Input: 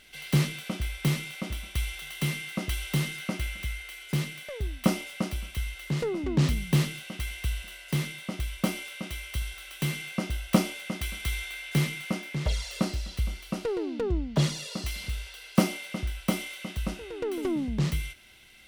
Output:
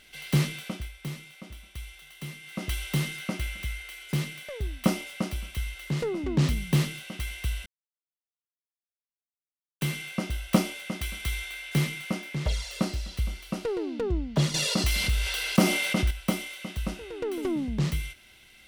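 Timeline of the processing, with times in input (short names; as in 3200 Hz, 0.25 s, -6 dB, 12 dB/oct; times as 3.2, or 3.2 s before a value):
0.63–2.7 dip -10 dB, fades 0.29 s
7.66–9.81 mute
14.54–16.11 fast leveller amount 50%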